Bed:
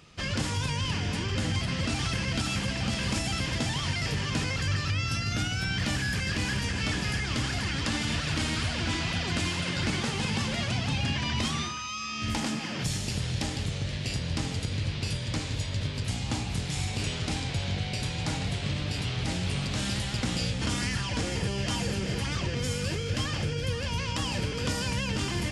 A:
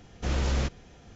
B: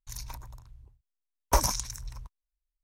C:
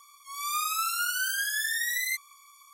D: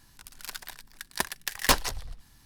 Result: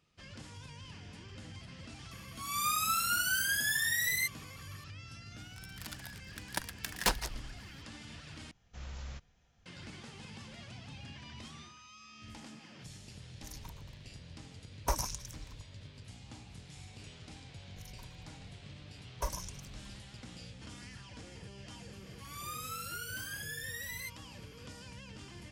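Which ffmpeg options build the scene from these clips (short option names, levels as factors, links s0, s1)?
-filter_complex "[3:a]asplit=2[s0][s1];[2:a]asplit=2[s2][s3];[0:a]volume=0.106[s4];[4:a]afreqshift=-63[s5];[1:a]equalizer=f=350:t=o:w=1.5:g=-11[s6];[s3]aecho=1:1:1.9:0.71[s7];[s4]asplit=2[s8][s9];[s8]atrim=end=8.514[s10];[s6]atrim=end=1.15,asetpts=PTS-STARTPTS,volume=0.158[s11];[s9]atrim=start=9.656[s12];[s0]atrim=end=2.73,asetpts=PTS-STARTPTS,volume=0.794,afade=t=in:d=0.004:c=hsin,afade=t=out:st=2.726:d=0.004:c=hsin,adelay=2110[s13];[s5]atrim=end=2.45,asetpts=PTS-STARTPTS,volume=0.422,afade=t=in:d=0.004:c=hsin,afade=t=out:st=2.446:d=0.004:c=hsin,adelay=236817S[s14];[s2]atrim=end=2.83,asetpts=PTS-STARTPTS,volume=0.376,afade=t=in:d=0.004:c=hsin,afade=t=out:st=2.826:d=0.004:c=hsin,adelay=13350[s15];[s7]atrim=end=2.83,asetpts=PTS-STARTPTS,volume=0.158,afade=t=in:d=0.004:c=hsin,afade=t=out:st=2.826:d=0.004:c=hsin,adelay=17690[s16];[s1]atrim=end=2.73,asetpts=PTS-STARTPTS,volume=0.224,afade=t=in:d=0.004:c=hsin,afade=t=out:st=2.726:d=0.004:c=hsin,adelay=21930[s17];[s10][s11]acrossfade=d=0.004:c1=hsin:c2=hsin[s18];[s18][s12]acrossfade=d=0.004:c1=hsin:c2=hsin[s19];[s19][s13][s14][s15][s16][s17]amix=inputs=6:normalize=0"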